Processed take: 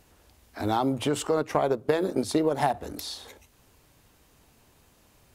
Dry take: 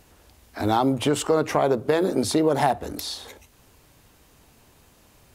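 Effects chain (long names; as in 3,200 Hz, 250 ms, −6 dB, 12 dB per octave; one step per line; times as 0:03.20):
0:01.37–0:02.74: transient designer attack +3 dB, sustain −7 dB
level −4.5 dB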